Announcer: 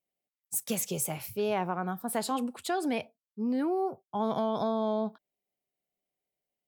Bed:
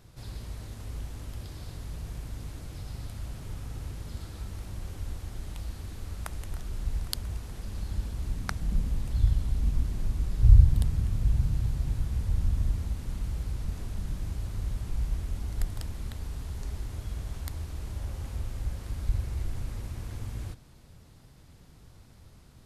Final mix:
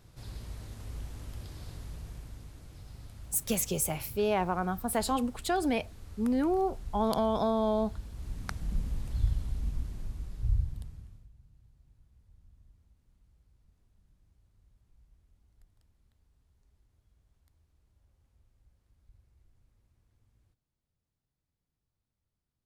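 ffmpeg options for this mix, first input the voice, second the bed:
ffmpeg -i stem1.wav -i stem2.wav -filter_complex "[0:a]adelay=2800,volume=1.5dB[link_01];[1:a]volume=1.5dB,afade=type=out:start_time=1.72:duration=0.77:silence=0.501187,afade=type=in:start_time=8.09:duration=0.42:silence=0.595662,afade=type=out:start_time=9.21:duration=2.08:silence=0.0375837[link_02];[link_01][link_02]amix=inputs=2:normalize=0" out.wav

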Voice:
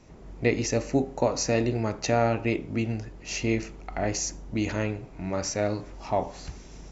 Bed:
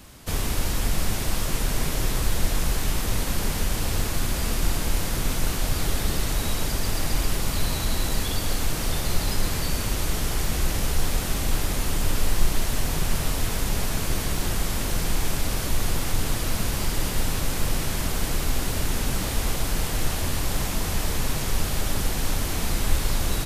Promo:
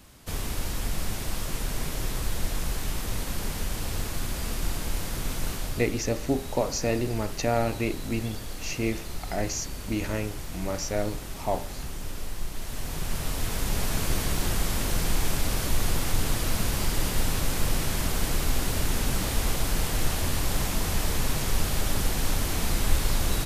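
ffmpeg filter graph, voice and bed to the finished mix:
ffmpeg -i stem1.wav -i stem2.wav -filter_complex "[0:a]adelay=5350,volume=-2dB[link_01];[1:a]volume=5.5dB,afade=type=out:start_time=5.52:duration=0.39:silence=0.473151,afade=type=in:start_time=12.52:duration=1.48:silence=0.281838[link_02];[link_01][link_02]amix=inputs=2:normalize=0" out.wav

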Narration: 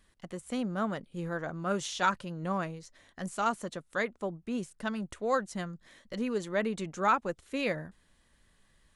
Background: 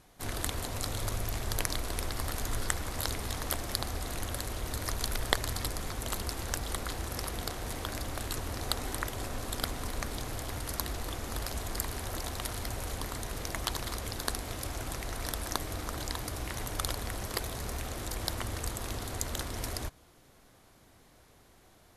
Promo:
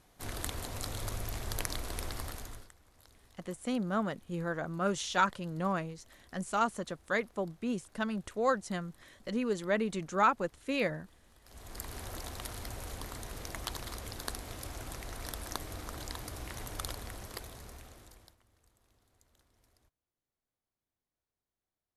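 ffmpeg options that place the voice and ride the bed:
ffmpeg -i stem1.wav -i stem2.wav -filter_complex "[0:a]adelay=3150,volume=0dB[link_01];[1:a]volume=18.5dB,afade=type=out:start_time=2.13:duration=0.57:silence=0.0630957,afade=type=in:start_time=11.43:duration=0.55:silence=0.0749894,afade=type=out:start_time=16.8:duration=1.57:silence=0.0354813[link_02];[link_01][link_02]amix=inputs=2:normalize=0" out.wav

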